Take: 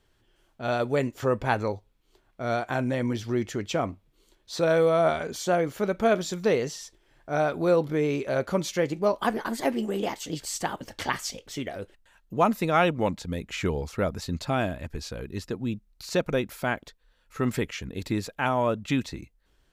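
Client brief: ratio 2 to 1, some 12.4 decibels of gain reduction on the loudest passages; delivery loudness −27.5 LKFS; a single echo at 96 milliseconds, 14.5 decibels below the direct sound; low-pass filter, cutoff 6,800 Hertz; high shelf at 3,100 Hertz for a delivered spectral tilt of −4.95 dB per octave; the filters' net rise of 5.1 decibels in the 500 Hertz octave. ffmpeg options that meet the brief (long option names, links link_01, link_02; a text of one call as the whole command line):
ffmpeg -i in.wav -af "lowpass=6800,equalizer=frequency=500:width_type=o:gain=6,highshelf=frequency=3100:gain=3,acompressor=threshold=-37dB:ratio=2,aecho=1:1:96:0.188,volume=6.5dB" out.wav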